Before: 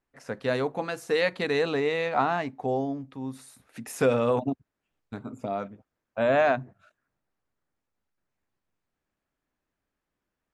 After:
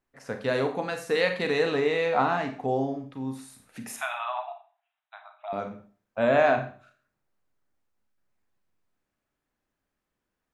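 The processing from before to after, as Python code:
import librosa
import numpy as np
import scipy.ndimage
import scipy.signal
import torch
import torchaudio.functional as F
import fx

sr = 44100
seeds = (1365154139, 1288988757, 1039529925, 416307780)

y = fx.brickwall_bandpass(x, sr, low_hz=620.0, high_hz=4000.0, at=(3.96, 5.53))
y = fx.rev_schroeder(y, sr, rt60_s=0.41, comb_ms=30, drr_db=5.5)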